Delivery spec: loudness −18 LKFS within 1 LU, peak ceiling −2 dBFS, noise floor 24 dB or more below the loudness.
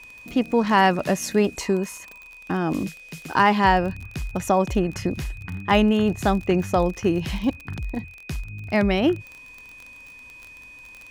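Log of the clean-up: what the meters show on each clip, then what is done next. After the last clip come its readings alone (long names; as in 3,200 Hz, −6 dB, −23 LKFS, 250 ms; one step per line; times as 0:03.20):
crackle rate 28 per second; interfering tone 2,500 Hz; level of the tone −42 dBFS; integrated loudness −22.5 LKFS; sample peak −5.5 dBFS; target loudness −18.0 LKFS
→ click removal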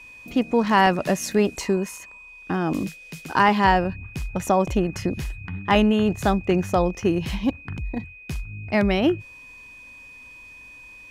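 crackle rate 0 per second; interfering tone 2,500 Hz; level of the tone −42 dBFS
→ notch filter 2,500 Hz, Q 30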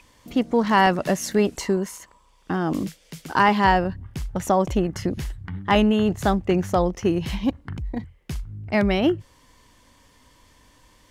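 interfering tone none found; integrated loudness −22.5 LKFS; sample peak −5.5 dBFS; target loudness −18.0 LKFS
→ level +4.5 dB
brickwall limiter −2 dBFS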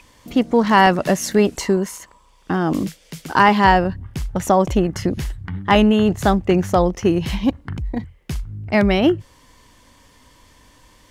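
integrated loudness −18.0 LKFS; sample peak −2.0 dBFS; background noise floor −53 dBFS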